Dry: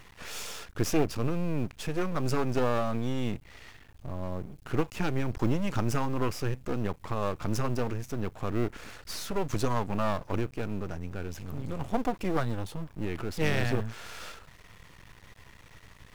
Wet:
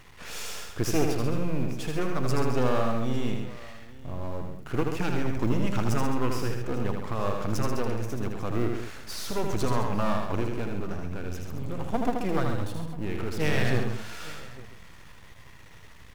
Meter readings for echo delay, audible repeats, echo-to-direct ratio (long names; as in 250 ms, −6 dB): 79 ms, 5, −2.5 dB